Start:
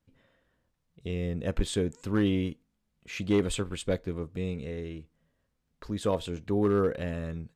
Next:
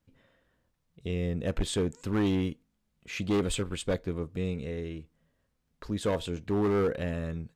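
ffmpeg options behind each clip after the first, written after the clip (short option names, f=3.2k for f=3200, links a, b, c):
-af "volume=23.5dB,asoftclip=hard,volume=-23.5dB,volume=1dB"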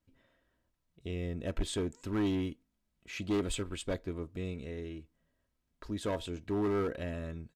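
-af "aecho=1:1:3.1:0.36,volume=-5dB"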